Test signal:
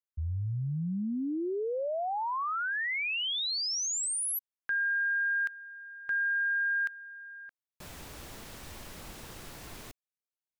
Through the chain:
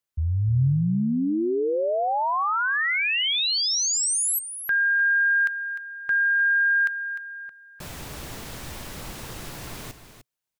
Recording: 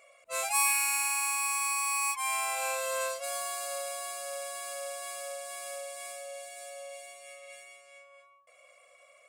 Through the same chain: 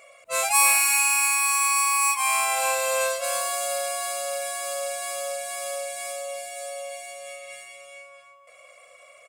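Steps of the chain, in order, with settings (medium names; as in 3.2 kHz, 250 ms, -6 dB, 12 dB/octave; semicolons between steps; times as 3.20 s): peaking EQ 130 Hz +5 dB 0.48 oct; delay 302 ms -11 dB; trim +8 dB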